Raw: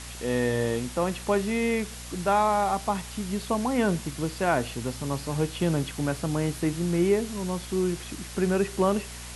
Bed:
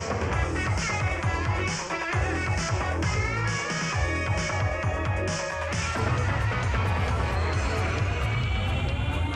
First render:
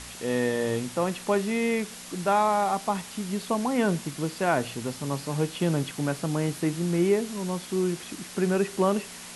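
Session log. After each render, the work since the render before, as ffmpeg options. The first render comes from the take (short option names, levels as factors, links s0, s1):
-af "bandreject=f=60:t=h:w=4,bandreject=f=120:t=h:w=4"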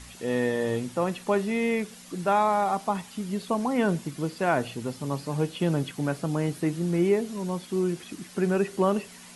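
-af "afftdn=nr=8:nf=-42"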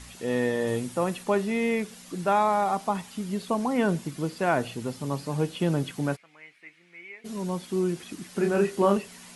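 -filter_complex "[0:a]asettb=1/sr,asplit=3[s0][s1][s2];[s0]atrim=end=0.674[s3];[s1]atrim=start=0.67:end=1.23,asetpts=PTS-STARTPTS,afade=t=in:d=0.004:c=qsin,afade=t=out:st=0.556:d=0.004:c=qsin,equalizer=f=9900:t=o:w=0.75:g=5.5[s4];[s2]atrim=start=1.226[s5];[s3][s4]acrossfade=d=0.004:c1=hsin:c2=qsin[s6];[s6][s5]acrossfade=d=0.004:c1=qsin:c2=hsin,asplit=3[s7][s8][s9];[s7]afade=t=out:st=6.15:d=0.02[s10];[s8]bandpass=f=2200:t=q:w=6.5,afade=t=in:st=6.15:d=0.02,afade=t=out:st=7.24:d=0.02[s11];[s9]afade=t=in:st=7.24:d=0.02[s12];[s10][s11][s12]amix=inputs=3:normalize=0,asettb=1/sr,asplit=3[s13][s14][s15];[s13]atrim=end=8.324[s16];[s14]atrim=start=8.32:end=8.97,asetpts=PTS-STARTPTS,afade=t=in:d=0.004:c=qsin,afade=t=out:st=0.646:d=0.004:c=qsin,asplit=2[s17][s18];[s18]adelay=30,volume=0.596[s19];[s17][s19]amix=inputs=2:normalize=0,atrim=end_sample=28665[s20];[s15]atrim=start=8.966[s21];[s16][s20]acrossfade=d=0.004:c1=hsin:c2=qsin[s22];[s22][s21]acrossfade=d=0.004:c1=qsin:c2=hsin"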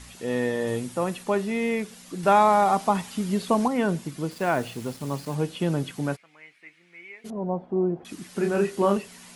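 -filter_complex "[0:a]asettb=1/sr,asplit=3[s0][s1][s2];[s0]atrim=end=2.234[s3];[s1]atrim=start=2.23:end=3.68,asetpts=PTS-STARTPTS,afade=t=in:d=0.004:c=qsin,afade=t=out:st=1.446:d=0.004:c=qsin,acontrast=24[s4];[s2]atrim=start=3.676[s5];[s3][s4]acrossfade=d=0.004:c1=hsin:c2=qsin[s6];[s6][s5]acrossfade=d=0.004:c1=qsin:c2=hsin,asettb=1/sr,asplit=3[s7][s8][s9];[s7]atrim=end=4.314[s10];[s8]atrim=start=4.31:end=5.35,asetpts=PTS-STARTPTS,afade=t=in:d=0.004:c=qsin,afade=t=out:st=1.036:d=0.004:c=qsin,acrusher=bits=6:mix=0:aa=0.5[s11];[s9]atrim=start=5.346[s12];[s10][s11]acrossfade=d=0.004:c1=hsin:c2=qsin[s13];[s13][s12]acrossfade=d=0.004:c1=qsin:c2=hsin,asettb=1/sr,asplit=3[s14][s15][s16];[s14]atrim=end=7.304[s17];[s15]atrim=start=7.3:end=8.05,asetpts=PTS-STARTPTS,afade=t=in:d=0.004:c=qsin,afade=t=out:st=0.746:d=0.004:c=qsin,lowpass=f=720:t=q:w=3.1[s18];[s16]atrim=start=8.046[s19];[s17][s18]acrossfade=d=0.004:c1=hsin:c2=qsin[s20];[s20][s19]acrossfade=d=0.004:c1=qsin:c2=hsin"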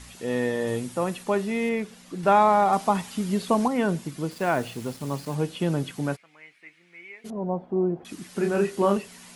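-filter_complex "[0:a]asettb=1/sr,asplit=3[s0][s1][s2];[s0]atrim=end=1.694[s3];[s1]atrim=start=1.69:end=2.73,asetpts=PTS-STARTPTS,afade=t=in:d=0.004:c=qsin,afade=t=out:st=1.036:d=0.004:c=qsin,highshelf=f=4800:g=-7.5[s4];[s2]atrim=start=2.726[s5];[s3][s4]acrossfade=d=0.004:c1=hsin:c2=qsin[s6];[s6][s5]acrossfade=d=0.004:c1=qsin:c2=hsin"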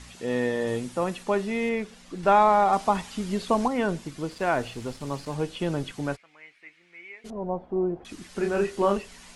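-af "lowpass=8300,asubboost=boost=10:cutoff=50"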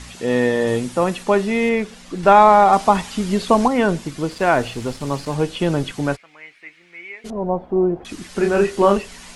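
-af "volume=2.66,alimiter=limit=0.891:level=0:latency=1"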